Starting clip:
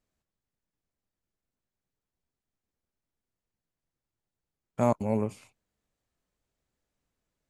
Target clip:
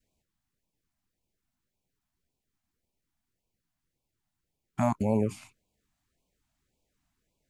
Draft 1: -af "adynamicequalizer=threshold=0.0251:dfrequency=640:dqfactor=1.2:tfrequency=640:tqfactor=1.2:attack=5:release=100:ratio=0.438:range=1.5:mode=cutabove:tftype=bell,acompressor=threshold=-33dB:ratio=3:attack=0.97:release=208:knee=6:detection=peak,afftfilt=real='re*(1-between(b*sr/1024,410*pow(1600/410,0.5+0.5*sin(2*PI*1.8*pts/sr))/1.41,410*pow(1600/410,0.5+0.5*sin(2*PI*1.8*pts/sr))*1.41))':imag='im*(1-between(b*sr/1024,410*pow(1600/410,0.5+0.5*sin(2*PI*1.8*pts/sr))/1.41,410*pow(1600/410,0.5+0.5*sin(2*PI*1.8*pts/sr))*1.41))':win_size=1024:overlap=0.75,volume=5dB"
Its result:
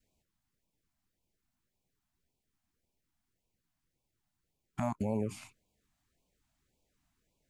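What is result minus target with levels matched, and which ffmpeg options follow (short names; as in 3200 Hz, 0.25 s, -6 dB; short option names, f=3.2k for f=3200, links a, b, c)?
compressor: peak gain reduction +7.5 dB
-af "adynamicequalizer=threshold=0.0251:dfrequency=640:dqfactor=1.2:tfrequency=640:tqfactor=1.2:attack=5:release=100:ratio=0.438:range=1.5:mode=cutabove:tftype=bell,acompressor=threshold=-21.5dB:ratio=3:attack=0.97:release=208:knee=6:detection=peak,afftfilt=real='re*(1-between(b*sr/1024,410*pow(1600/410,0.5+0.5*sin(2*PI*1.8*pts/sr))/1.41,410*pow(1600/410,0.5+0.5*sin(2*PI*1.8*pts/sr))*1.41))':imag='im*(1-between(b*sr/1024,410*pow(1600/410,0.5+0.5*sin(2*PI*1.8*pts/sr))/1.41,410*pow(1600/410,0.5+0.5*sin(2*PI*1.8*pts/sr))*1.41))':win_size=1024:overlap=0.75,volume=5dB"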